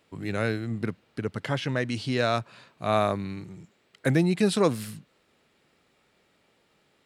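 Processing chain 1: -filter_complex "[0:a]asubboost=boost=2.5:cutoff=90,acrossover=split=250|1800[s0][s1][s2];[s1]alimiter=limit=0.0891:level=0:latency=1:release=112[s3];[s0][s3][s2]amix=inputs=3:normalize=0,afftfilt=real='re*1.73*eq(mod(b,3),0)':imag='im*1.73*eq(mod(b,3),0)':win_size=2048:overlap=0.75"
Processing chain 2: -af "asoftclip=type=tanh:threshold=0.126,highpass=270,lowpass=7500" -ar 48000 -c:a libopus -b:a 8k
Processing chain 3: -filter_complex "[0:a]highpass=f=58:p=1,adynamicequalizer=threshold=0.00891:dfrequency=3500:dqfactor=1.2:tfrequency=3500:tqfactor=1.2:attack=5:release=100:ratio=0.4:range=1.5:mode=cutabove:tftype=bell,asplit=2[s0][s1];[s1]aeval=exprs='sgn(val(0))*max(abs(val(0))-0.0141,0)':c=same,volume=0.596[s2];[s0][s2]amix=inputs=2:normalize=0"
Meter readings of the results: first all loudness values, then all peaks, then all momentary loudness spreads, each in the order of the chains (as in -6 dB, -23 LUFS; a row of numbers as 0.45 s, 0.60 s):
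-32.0 LUFS, -33.0 LUFS, -24.5 LUFS; -14.5 dBFS, -14.0 dBFS, -5.5 dBFS; 12 LU, 12 LU, 12 LU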